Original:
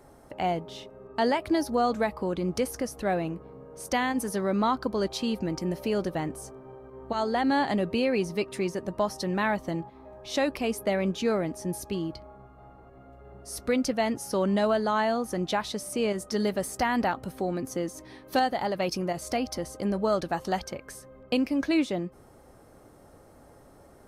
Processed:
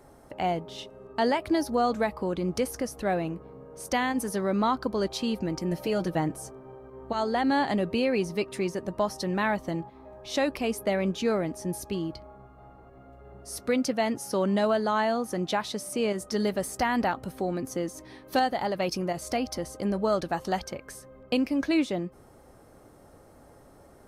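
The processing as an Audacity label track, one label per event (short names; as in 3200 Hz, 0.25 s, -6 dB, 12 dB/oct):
0.780000	1.130000	spectral gain 2600–12000 Hz +6 dB
5.710000	6.480000	comb 6.3 ms
13.580000	16.210000	HPF 97 Hz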